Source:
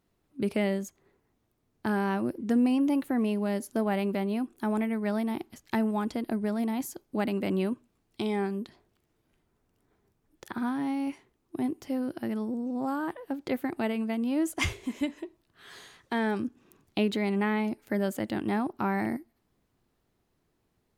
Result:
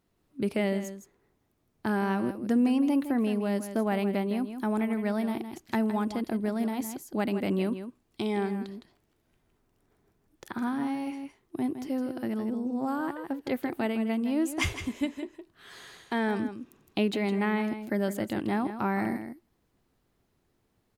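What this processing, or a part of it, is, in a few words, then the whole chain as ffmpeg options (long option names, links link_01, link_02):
ducked delay: -filter_complex "[0:a]asplit=3[link_01][link_02][link_03];[link_02]adelay=162,volume=-3.5dB[link_04];[link_03]apad=whole_len=932182[link_05];[link_04][link_05]sidechaincompress=threshold=-34dB:ratio=3:attack=20:release=871[link_06];[link_01][link_06]amix=inputs=2:normalize=0"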